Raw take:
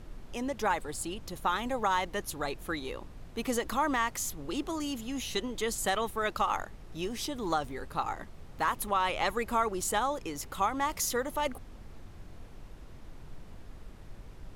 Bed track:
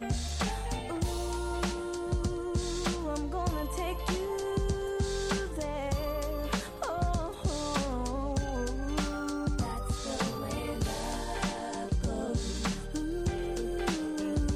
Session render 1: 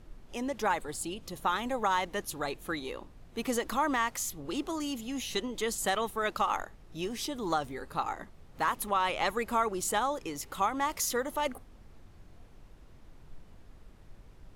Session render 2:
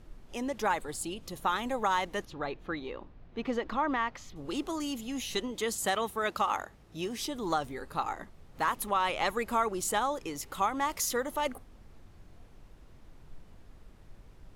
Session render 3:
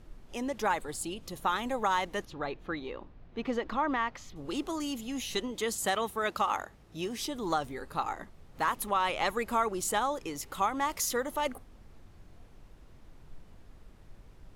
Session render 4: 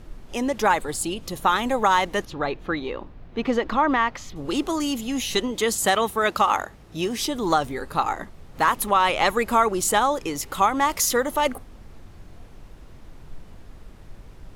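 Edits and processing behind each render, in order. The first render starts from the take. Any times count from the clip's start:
noise print and reduce 6 dB
2.25–4.36 s: distance through air 230 m; 5.51–7.20 s: high-pass 48 Hz
no audible change
trim +9.5 dB

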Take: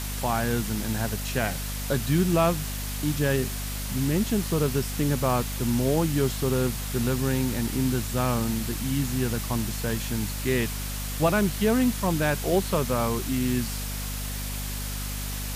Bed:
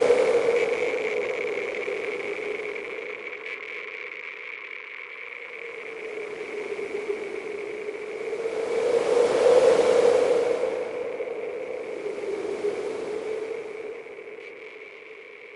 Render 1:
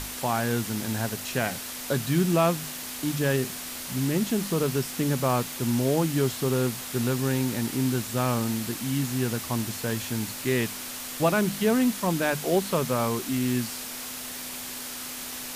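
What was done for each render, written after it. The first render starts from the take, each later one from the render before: hum notches 50/100/150/200 Hz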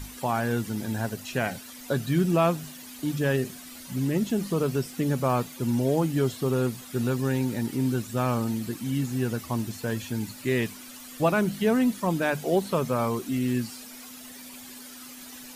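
noise reduction 12 dB, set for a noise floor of -37 dBFS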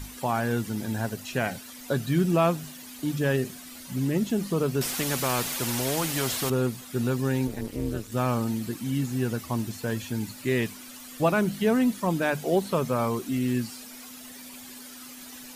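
4.81–6.50 s: spectrum-flattening compressor 2:1; 7.47–8.12 s: AM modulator 210 Hz, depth 95%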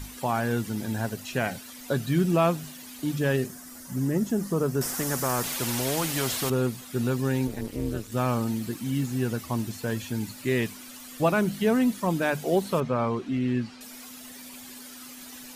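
3.46–5.44 s: high-order bell 3.1 kHz -9 dB 1.2 oct; 8.57–9.12 s: block-companded coder 7-bit; 12.80–13.81 s: low-pass 3.3 kHz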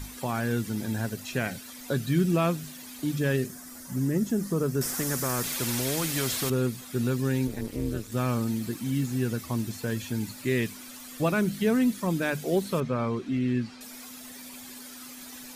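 dynamic bell 810 Hz, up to -7 dB, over -41 dBFS, Q 1.3; band-stop 2.9 kHz, Q 21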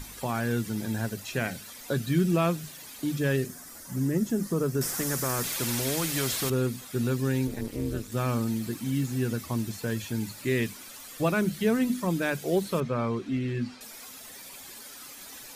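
hum notches 50/100/150/200/250 Hz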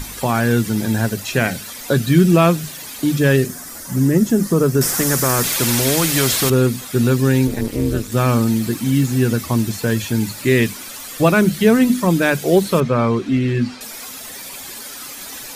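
trim +12 dB

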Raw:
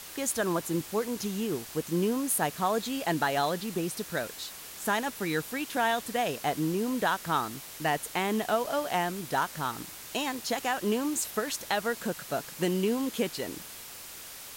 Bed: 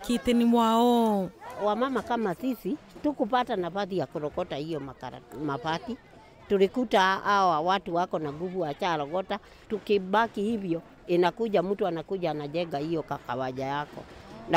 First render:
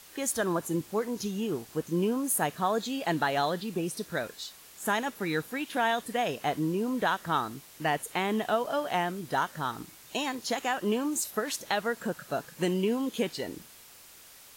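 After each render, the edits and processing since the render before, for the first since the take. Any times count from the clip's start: noise print and reduce 8 dB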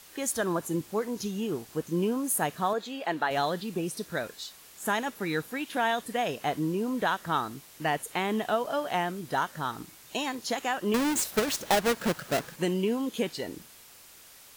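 2.73–3.31 s: tone controls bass -12 dB, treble -9 dB; 10.94–12.56 s: square wave that keeps the level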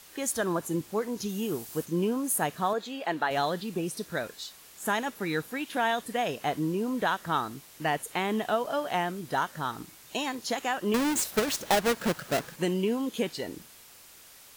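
1.28–1.84 s: treble shelf 9.9 kHz -> 5.1 kHz +11.5 dB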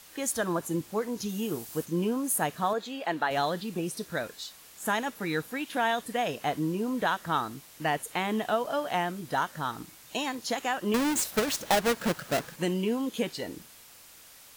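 band-stop 390 Hz, Q 12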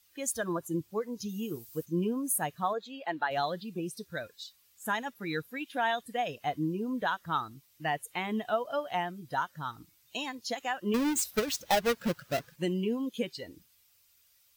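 expander on every frequency bin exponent 1.5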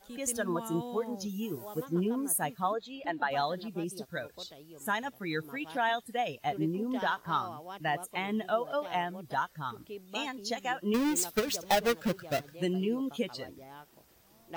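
add bed -19 dB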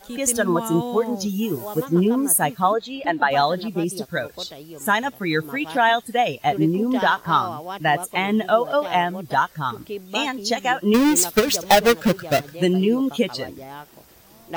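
trim +12 dB

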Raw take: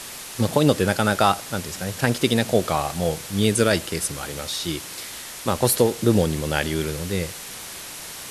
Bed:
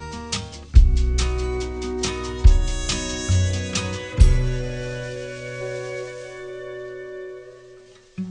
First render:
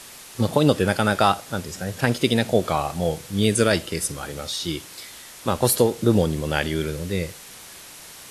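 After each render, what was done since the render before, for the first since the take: noise print and reduce 6 dB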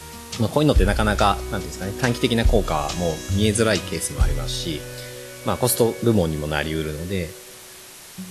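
add bed -6.5 dB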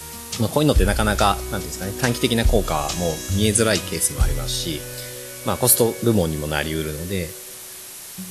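treble shelf 7.4 kHz +10.5 dB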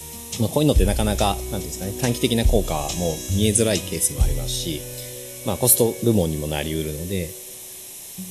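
peaking EQ 1.4 kHz -14.5 dB 0.72 oct; band-stop 4.6 kHz, Q 6.1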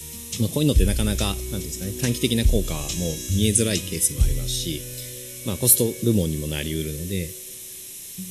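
peaking EQ 760 Hz -15 dB 0.91 oct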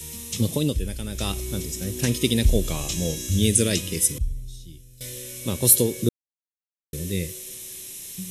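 0.52–1.38 s: dip -9.5 dB, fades 0.27 s; 4.18–5.01 s: amplifier tone stack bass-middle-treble 10-0-1; 6.09–6.93 s: mute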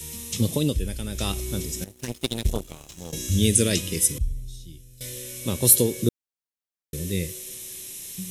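1.84–3.13 s: power-law waveshaper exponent 2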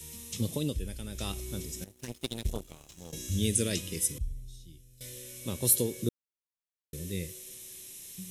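trim -8.5 dB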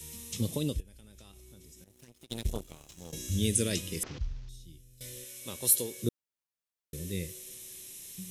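0.80–2.30 s: compression, threshold -51 dBFS; 4.03–4.49 s: CVSD coder 32 kbps; 5.24–6.04 s: bass shelf 400 Hz -12 dB

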